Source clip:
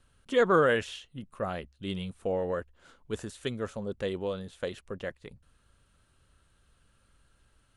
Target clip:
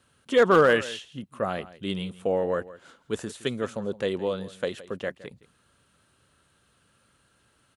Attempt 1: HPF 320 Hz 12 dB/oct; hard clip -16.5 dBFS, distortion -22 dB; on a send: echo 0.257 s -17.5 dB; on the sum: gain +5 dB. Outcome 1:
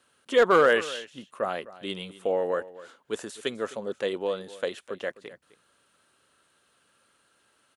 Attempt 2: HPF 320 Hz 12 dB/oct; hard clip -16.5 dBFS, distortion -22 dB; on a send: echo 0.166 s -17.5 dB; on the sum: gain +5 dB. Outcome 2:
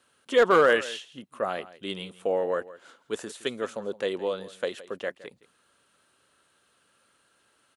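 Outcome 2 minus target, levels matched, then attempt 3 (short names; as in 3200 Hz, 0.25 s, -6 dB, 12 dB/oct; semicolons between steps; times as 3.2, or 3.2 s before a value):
125 Hz band -9.0 dB
HPF 130 Hz 12 dB/oct; hard clip -16.5 dBFS, distortion -24 dB; on a send: echo 0.166 s -17.5 dB; on the sum: gain +5 dB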